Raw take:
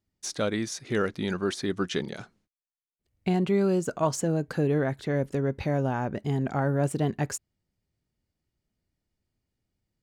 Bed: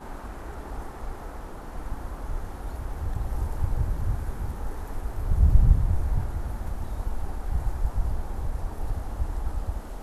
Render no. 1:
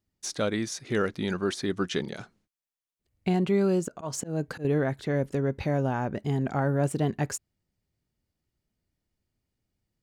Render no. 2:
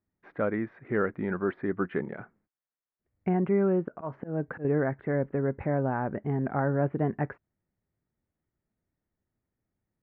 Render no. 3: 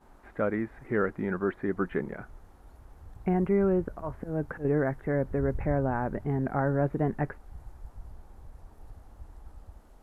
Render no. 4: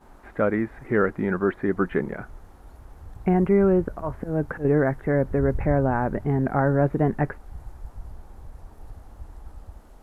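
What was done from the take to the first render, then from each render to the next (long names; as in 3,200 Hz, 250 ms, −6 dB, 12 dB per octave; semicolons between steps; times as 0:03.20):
0:03.88–0:04.65: volume swells 168 ms
Butterworth low-pass 2,000 Hz 36 dB per octave; low-shelf EQ 93 Hz −7.5 dB
mix in bed −18 dB
level +6 dB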